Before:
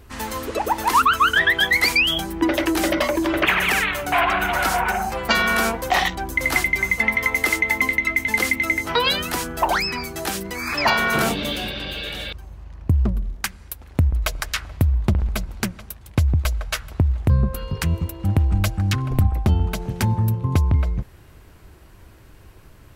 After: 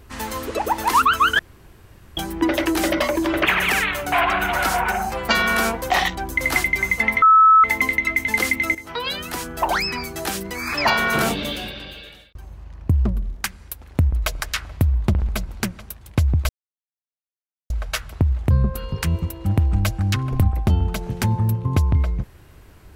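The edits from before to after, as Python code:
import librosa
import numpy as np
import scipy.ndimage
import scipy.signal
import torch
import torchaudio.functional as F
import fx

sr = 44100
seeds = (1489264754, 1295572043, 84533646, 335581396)

y = fx.edit(x, sr, fx.room_tone_fill(start_s=1.39, length_s=0.78),
    fx.bleep(start_s=7.22, length_s=0.42, hz=1300.0, db=-8.0),
    fx.fade_in_from(start_s=8.75, length_s=1.09, floor_db=-12.5),
    fx.fade_out_span(start_s=11.34, length_s=1.01),
    fx.insert_silence(at_s=16.49, length_s=1.21), tone=tone)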